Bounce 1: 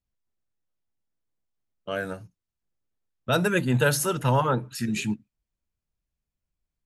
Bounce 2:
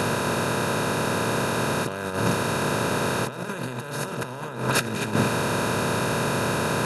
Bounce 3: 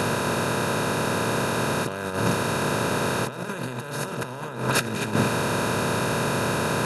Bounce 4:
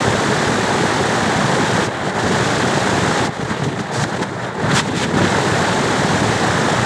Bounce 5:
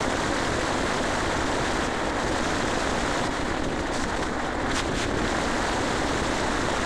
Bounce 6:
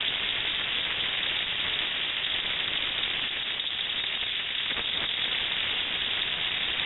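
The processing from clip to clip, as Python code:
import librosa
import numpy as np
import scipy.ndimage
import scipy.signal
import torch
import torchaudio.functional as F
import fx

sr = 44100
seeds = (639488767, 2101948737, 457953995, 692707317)

y1 = fx.bin_compress(x, sr, power=0.2)
y1 = fx.high_shelf(y1, sr, hz=6400.0, db=-5.5)
y1 = fx.over_compress(y1, sr, threshold_db=-23.0, ratio=-0.5)
y2 = y1
y3 = fx.leveller(y2, sr, passes=3)
y3 = fx.noise_vocoder(y3, sr, seeds[0], bands=6)
y4 = y3 * np.sin(2.0 * np.pi * 130.0 * np.arange(len(y3)) / sr)
y4 = y4 + 10.0 ** (-10.5 / 20.0) * np.pad(y4, (int(229 * sr / 1000.0), 0))[:len(y4)]
y4 = fx.env_flatten(y4, sr, amount_pct=70)
y4 = y4 * 10.0 ** (-9.0 / 20.0)
y5 = fx.diode_clip(y4, sr, knee_db=-29.0)
y5 = fx.freq_invert(y5, sr, carrier_hz=3700)
y5 = y5 * 10.0 ** (-1.0 / 20.0)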